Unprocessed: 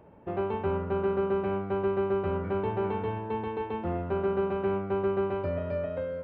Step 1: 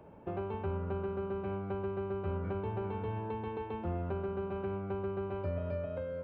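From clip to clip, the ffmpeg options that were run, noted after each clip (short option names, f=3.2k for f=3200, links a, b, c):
-filter_complex "[0:a]bandreject=f=1.9k:w=11,acrossover=split=130[a][b];[b]acompressor=threshold=-37dB:ratio=4[c];[a][c]amix=inputs=2:normalize=0"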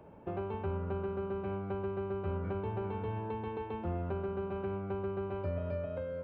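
-af anull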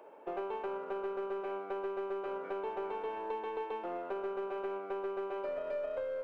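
-filter_complex "[0:a]highpass=f=380:w=0.5412,highpass=f=380:w=1.3066,asplit=2[a][b];[b]aeval=exprs='clip(val(0),-1,0.00668)':c=same,volume=-7.5dB[c];[a][c]amix=inputs=2:normalize=0"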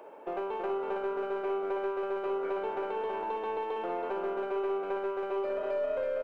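-filter_complex "[0:a]asplit=2[a][b];[b]alimiter=level_in=12dB:limit=-24dB:level=0:latency=1,volume=-12dB,volume=-1.5dB[c];[a][c]amix=inputs=2:normalize=0,aecho=1:1:326:0.596"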